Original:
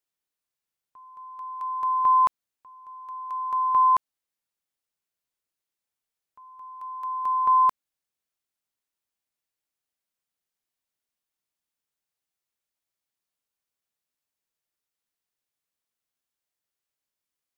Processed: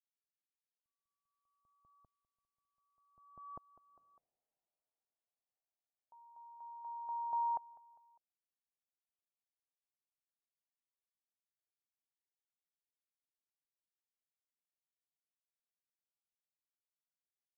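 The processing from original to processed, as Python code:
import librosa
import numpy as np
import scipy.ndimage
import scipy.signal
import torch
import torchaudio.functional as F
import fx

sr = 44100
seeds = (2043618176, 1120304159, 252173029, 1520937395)

p1 = fx.doppler_pass(x, sr, speed_mps=34, closest_m=2.3, pass_at_s=4.03)
p2 = fx.peak_eq(p1, sr, hz=700.0, db=14.5, octaves=1.0)
p3 = p2 + fx.echo_feedback(p2, sr, ms=201, feedback_pct=48, wet_db=-21.0, dry=0)
p4 = fx.filter_sweep_lowpass(p3, sr, from_hz=130.0, to_hz=1100.0, start_s=3.07, end_s=4.84, q=0.71)
y = F.gain(torch.from_numpy(p4), 10.5).numpy()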